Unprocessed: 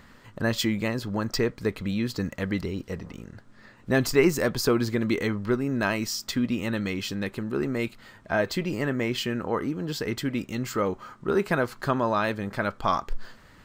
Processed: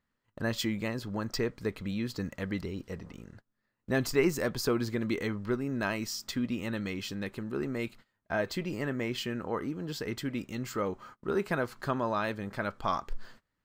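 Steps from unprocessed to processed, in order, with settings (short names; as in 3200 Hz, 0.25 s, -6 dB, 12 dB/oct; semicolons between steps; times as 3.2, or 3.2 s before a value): gate -43 dBFS, range -24 dB; gain -6 dB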